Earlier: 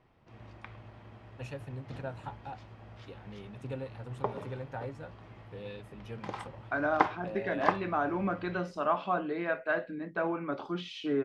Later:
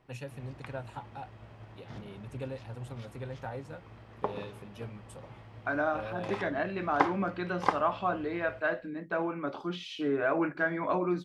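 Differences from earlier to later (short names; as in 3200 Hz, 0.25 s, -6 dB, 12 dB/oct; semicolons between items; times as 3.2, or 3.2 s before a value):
first voice: entry -1.30 s; second voice: entry -1.05 s; master: add high shelf 8700 Hz +11 dB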